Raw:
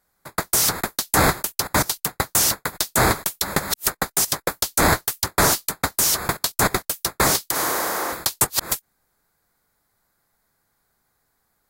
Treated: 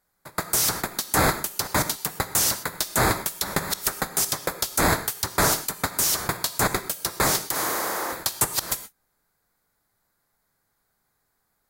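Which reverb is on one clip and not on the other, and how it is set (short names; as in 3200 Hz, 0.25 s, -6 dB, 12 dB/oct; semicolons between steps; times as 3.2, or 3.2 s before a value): non-linear reverb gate 0.15 s flat, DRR 10.5 dB; gain -3.5 dB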